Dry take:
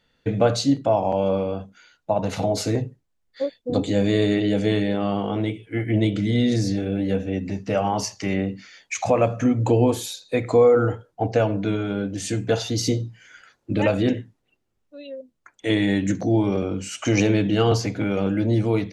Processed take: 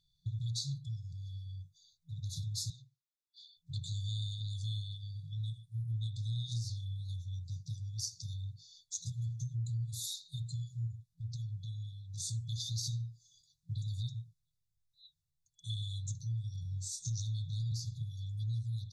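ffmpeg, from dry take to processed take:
-filter_complex "[0:a]asettb=1/sr,asplit=3[a][b][c];[a]atrim=end=2.704[d];[b]atrim=start=2.7:end=3.57,asetpts=PTS-STARTPTS,afade=t=in:d=0.004:c=qsin,afade=t=out:st=0.866:d=0.004:c=qsin,highpass=470,lowpass=5.5k[e];[c]atrim=start=3.566[f];[d][e]acrossfade=d=0.004:c1=hsin:c2=qsin[g];[g][f]acrossfade=d=0.004:c1=qsin:c2=hsin,asettb=1/sr,asplit=3[h][i][j];[h]atrim=end=10.874[k];[i]atrim=start=10.87:end=12.3,asetpts=PTS-STARTPTS,afade=t=in:d=0.004:c=qsin,afade=t=out:st=1.426:d=0.004:c=qsin,acompressor=threshold=-26dB:ratio=2:attack=3.2:release=140:knee=1:detection=peak[l];[j]atrim=start=12.296[m];[k][l]acrossfade=d=0.004:c1=hsin:c2=qsin[n];[n][m]acrossfade=d=0.004:c1=qsin:c2=hsin,asettb=1/sr,asplit=3[o][p][q];[o]atrim=end=16.624[r];[p]atrim=start=16.62:end=17.1,asetpts=PTS-STARTPTS,afade=t=in:d=0.004:c=qsin,afade=t=out:st=0.476:d=0.004:c=qsin,asplit=2[s][t];[t]adelay=30,volume=-5dB[u];[s][u]amix=inputs=2:normalize=0,atrim=end_sample=21168[v];[q]atrim=start=17.096[w];[r][v]acrossfade=d=0.004:c1=hsin:c2=qsin[x];[x][w]acrossfade=d=0.004:c1=qsin:c2=hsin,afftfilt=real='re*(1-between(b*sr/4096,170,3400))':imag='im*(1-between(b*sr/4096,170,3400))':win_size=4096:overlap=0.75,acompressor=threshold=-27dB:ratio=6,volume=-6.5dB"

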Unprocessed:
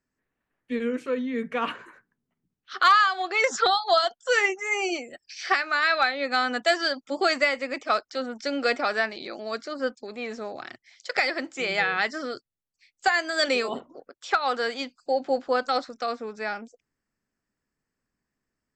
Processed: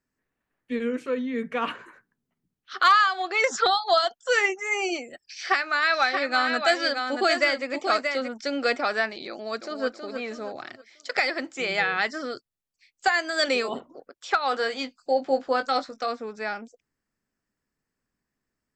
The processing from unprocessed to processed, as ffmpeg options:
-filter_complex "[0:a]asplit=3[a][b][c];[a]afade=t=out:st=5.9:d=0.02[d];[b]aecho=1:1:630:0.531,afade=t=in:st=5.9:d=0.02,afade=t=out:st=8.27:d=0.02[e];[c]afade=t=in:st=8.27:d=0.02[f];[d][e][f]amix=inputs=3:normalize=0,asplit=2[g][h];[h]afade=t=in:st=9.29:d=0.01,afade=t=out:st=9.85:d=0.01,aecho=0:1:320|640|960|1280|1600:0.501187|0.200475|0.08019|0.032076|0.0128304[i];[g][i]amix=inputs=2:normalize=0,asettb=1/sr,asplit=3[j][k][l];[j]atrim=end=14.494[m];[k]atrim=start=14.49:end=16.08,asetpts=PTS-STARTPTS,afade=t=in:d=0.004:c=qsin,afade=t=out:st=1.586:d=0.004:c=qsin,asplit=2[n][o];[o]adelay=19,volume=-8.5dB[p];[n][p]amix=inputs=2:normalize=0,atrim=end_sample=70119[q];[l]atrim=start=16.076[r];[m][q]acrossfade=d=0.004:c1=hsin:c2=qsin[s];[s][r]acrossfade=d=0.004:c1=qsin:c2=hsin"

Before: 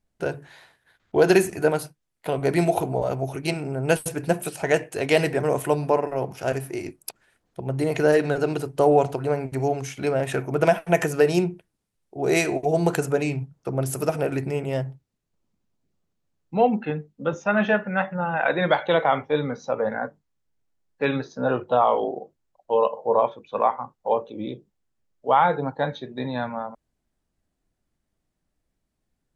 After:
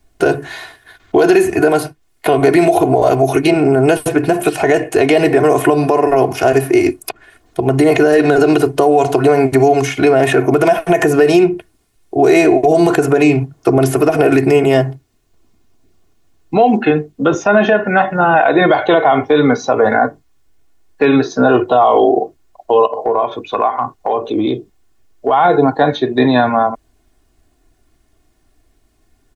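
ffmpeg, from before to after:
-filter_complex "[0:a]asplit=3[a][b][c];[a]afade=t=out:st=22.85:d=0.02[d];[b]acompressor=threshold=-30dB:ratio=5:attack=3.2:release=140:knee=1:detection=peak,afade=t=in:st=22.85:d=0.02,afade=t=out:st=25.33:d=0.02[e];[c]afade=t=in:st=25.33:d=0.02[f];[d][e][f]amix=inputs=3:normalize=0,aecho=1:1:2.8:0.64,acrossover=split=130|980|3200[g][h][i][j];[g]acompressor=threshold=-51dB:ratio=4[k];[h]acompressor=threshold=-21dB:ratio=4[l];[i]acompressor=threshold=-35dB:ratio=4[m];[j]acompressor=threshold=-48dB:ratio=4[n];[k][l][m][n]amix=inputs=4:normalize=0,alimiter=level_in=19dB:limit=-1dB:release=50:level=0:latency=1,volume=-1dB"

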